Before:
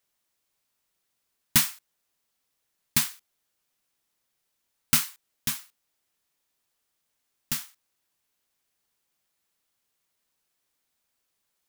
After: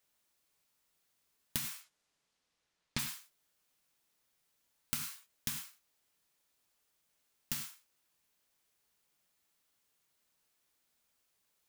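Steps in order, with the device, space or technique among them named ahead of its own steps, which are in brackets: 1.73–2.98 s: low-pass 9 kHz -> 5 kHz 12 dB/octave; gated-style reverb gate 120 ms flat, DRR 6 dB; serial compression, peaks first (compression, threshold -24 dBFS, peak gain reduction 9.5 dB; compression 2:1, threshold -38 dBFS, peak gain reduction 9.5 dB); trim -1 dB

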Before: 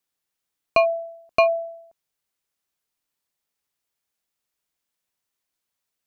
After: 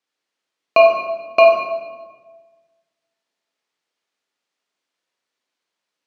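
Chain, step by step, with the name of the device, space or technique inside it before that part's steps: supermarket ceiling speaker (band-pass 260–5000 Hz; reverberation RT60 1.4 s, pre-delay 15 ms, DRR -1 dB); trim +3.5 dB

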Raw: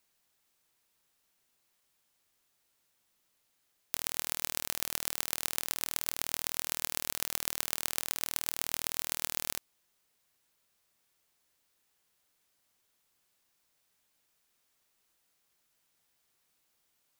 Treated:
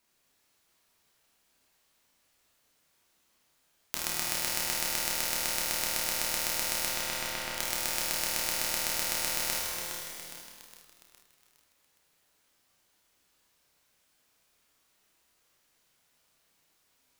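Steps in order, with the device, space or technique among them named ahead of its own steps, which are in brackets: 6.86–7.56 s: low-pass 6.3 kHz -> 2.6 kHz 12 dB/octave; treble shelf 8.1 kHz -5 dB; tunnel (flutter echo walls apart 5.3 m, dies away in 0.23 s; reverberation RT60 2.8 s, pre-delay 7 ms, DRR -3 dB); bit-crushed delay 412 ms, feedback 55%, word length 7-bit, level -7.5 dB; trim +1.5 dB

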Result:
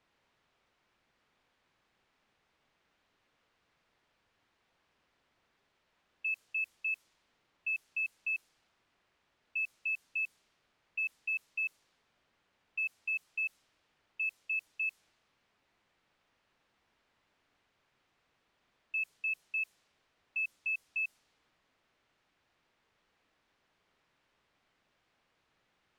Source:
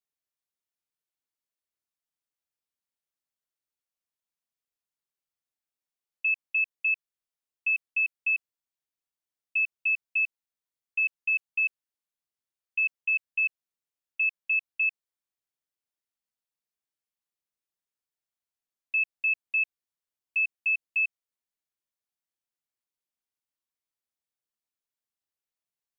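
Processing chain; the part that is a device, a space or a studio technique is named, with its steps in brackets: cassette deck with a dynamic noise filter (white noise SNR 25 dB; level-controlled noise filter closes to 2.5 kHz, open at -23.5 dBFS); trim -8.5 dB

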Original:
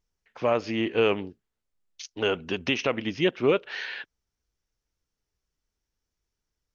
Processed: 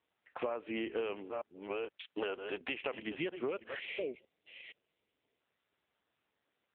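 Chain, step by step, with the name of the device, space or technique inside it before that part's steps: chunks repeated in reverse 472 ms, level -12 dB; 1.23–2.83 s: dynamic bell 160 Hz, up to -7 dB, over -48 dBFS, Q 1.4; 3.79–5.41 s: time-frequency box 750–1900 Hz -30 dB; voicemail (band-pass 320–2900 Hz; compression 10:1, threshold -38 dBFS, peak gain reduction 19.5 dB; trim +4.5 dB; AMR-NB 6.7 kbps 8 kHz)

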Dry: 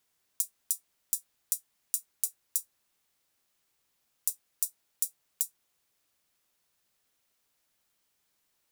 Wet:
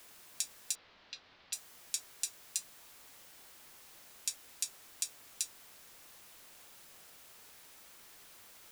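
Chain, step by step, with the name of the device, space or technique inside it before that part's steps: wax cylinder (band-pass 360–2600 Hz; wow and flutter; white noise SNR 11 dB); 0.75–1.53 s: steep low-pass 4.5 kHz; trim +18 dB

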